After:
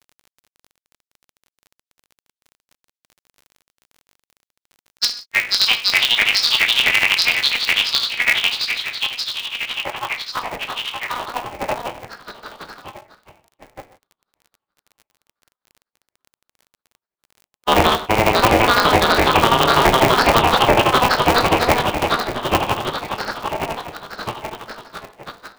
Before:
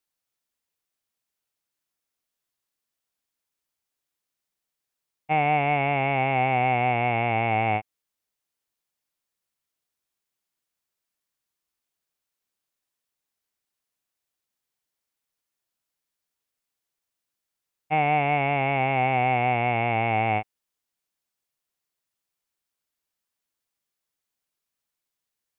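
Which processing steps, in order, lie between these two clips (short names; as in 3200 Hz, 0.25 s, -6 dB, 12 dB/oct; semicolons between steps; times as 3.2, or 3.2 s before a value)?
on a send: diffused feedback echo 0.845 s, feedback 53%, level -7 dB; on the sum: gate -55 dBFS, range -35 dB; high-pass sweep 3200 Hz -> 270 Hz, 9.62–11.57; compressor 2:1, threshold -26 dBFS, peak gain reduction 5.5 dB; high shelf 2300 Hz +10 dB; grains 88 ms, grains 12/s, spray 0.896 s, pitch spread up and down by 7 st; tilt shelf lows +4.5 dB, about 880 Hz; non-linear reverb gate 0.19 s falling, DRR 5.5 dB; formant shift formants +5 st; crackle 23/s -53 dBFS; maximiser +19.5 dB; polarity switched at an audio rate 120 Hz; gain -2 dB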